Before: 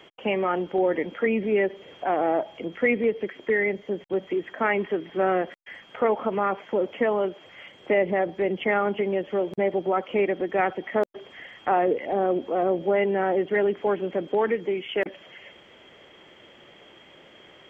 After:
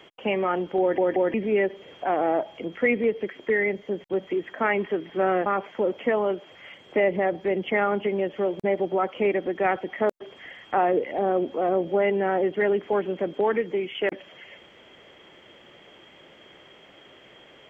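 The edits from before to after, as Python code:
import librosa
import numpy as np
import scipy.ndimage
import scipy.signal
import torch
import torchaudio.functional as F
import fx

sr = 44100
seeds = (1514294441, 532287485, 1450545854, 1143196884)

y = fx.edit(x, sr, fx.stutter_over(start_s=0.8, slice_s=0.18, count=3),
    fx.cut(start_s=5.46, length_s=0.94), tone=tone)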